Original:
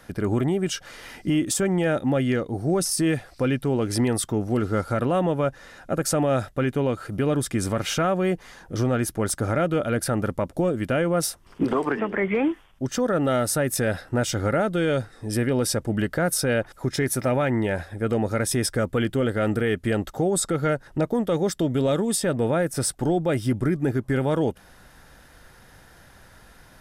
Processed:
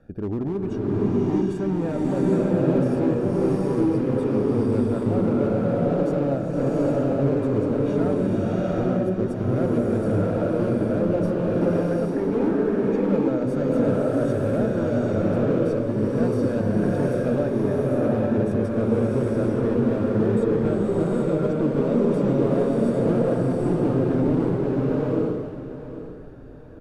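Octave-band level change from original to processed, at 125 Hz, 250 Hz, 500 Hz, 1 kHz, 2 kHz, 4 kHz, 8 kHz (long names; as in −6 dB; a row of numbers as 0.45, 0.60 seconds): +2.0 dB, +4.0 dB, +2.5 dB, −3.0 dB, −8.0 dB, below −10 dB, below −20 dB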